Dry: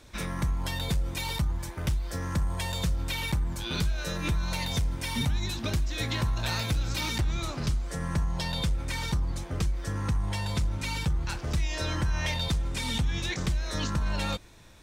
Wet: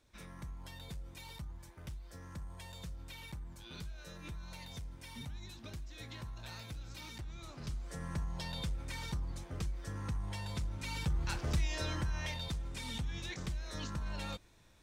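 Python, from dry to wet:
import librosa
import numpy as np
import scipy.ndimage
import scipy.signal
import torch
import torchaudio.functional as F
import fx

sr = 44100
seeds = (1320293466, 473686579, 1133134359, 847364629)

y = fx.gain(x, sr, db=fx.line((7.37, -17.5), (7.9, -10.0), (10.75, -10.0), (11.4, -3.0), (12.43, -11.0)))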